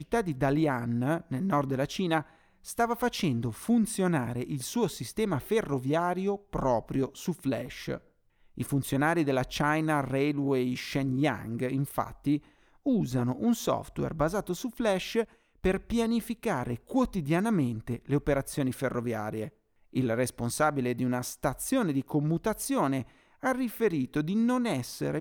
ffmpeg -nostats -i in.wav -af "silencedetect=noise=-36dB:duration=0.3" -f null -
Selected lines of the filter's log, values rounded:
silence_start: 2.22
silence_end: 2.68 | silence_duration: 0.46
silence_start: 7.97
silence_end: 8.58 | silence_duration: 0.60
silence_start: 12.38
silence_end: 12.86 | silence_duration: 0.48
silence_start: 15.24
silence_end: 15.64 | silence_duration: 0.40
silence_start: 19.48
silence_end: 19.95 | silence_duration: 0.48
silence_start: 23.02
silence_end: 23.43 | silence_duration: 0.41